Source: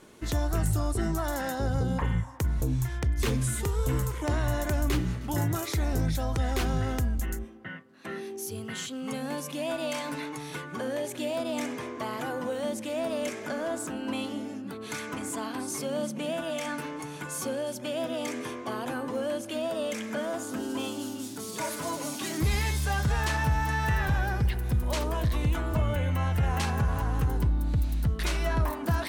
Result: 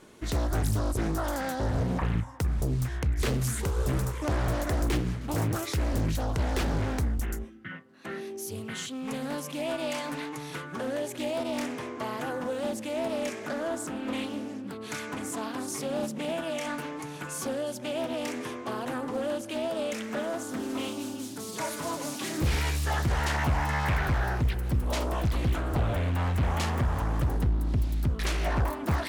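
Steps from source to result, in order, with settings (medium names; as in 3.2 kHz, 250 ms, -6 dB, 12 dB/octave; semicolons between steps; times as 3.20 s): time-frequency box 7.49–7.71 s, 380–1200 Hz -12 dB; loudspeaker Doppler distortion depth 0.95 ms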